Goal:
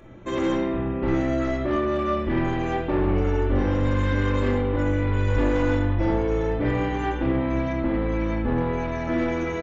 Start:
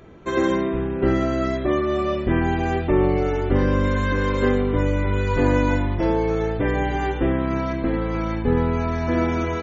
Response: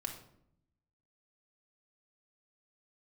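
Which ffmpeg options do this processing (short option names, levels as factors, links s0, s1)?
-filter_complex "[0:a]bandreject=f=4500:w=5.1,aresample=16000,asoftclip=type=tanh:threshold=0.119,aresample=44100[s0];[1:a]atrim=start_sample=2205[s1];[s0][s1]afir=irnorm=-1:irlink=0"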